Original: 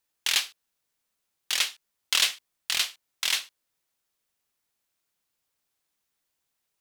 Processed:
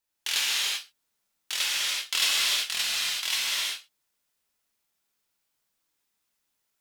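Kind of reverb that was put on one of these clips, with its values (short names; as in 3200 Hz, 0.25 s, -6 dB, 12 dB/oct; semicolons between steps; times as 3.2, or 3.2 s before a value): non-linear reverb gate 0.41 s flat, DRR -6.5 dB; gain -5.5 dB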